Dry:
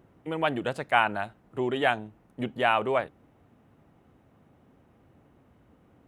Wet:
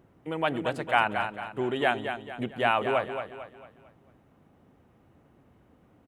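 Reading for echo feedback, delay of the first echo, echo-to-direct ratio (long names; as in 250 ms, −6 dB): 40%, 224 ms, −7.0 dB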